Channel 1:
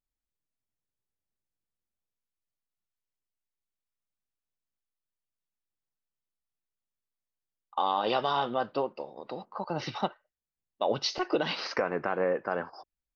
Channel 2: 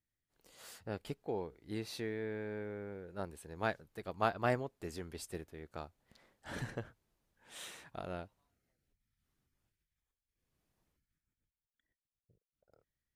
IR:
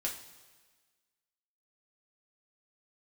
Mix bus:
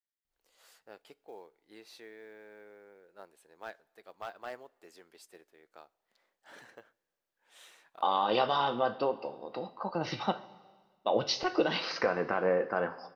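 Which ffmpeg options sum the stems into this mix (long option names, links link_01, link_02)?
-filter_complex "[0:a]adelay=250,volume=-4dB,asplit=2[link_01][link_02];[link_02]volume=-4.5dB[link_03];[1:a]highpass=460,asoftclip=type=hard:threshold=-25.5dB,acrusher=bits=7:mode=log:mix=0:aa=0.000001,volume=-7.5dB,asplit=2[link_04][link_05];[link_05]volume=-19dB[link_06];[2:a]atrim=start_sample=2205[link_07];[link_03][link_06]amix=inputs=2:normalize=0[link_08];[link_08][link_07]afir=irnorm=-1:irlink=0[link_09];[link_01][link_04][link_09]amix=inputs=3:normalize=0,equalizer=frequency=9700:width_type=o:width=0.8:gain=-4"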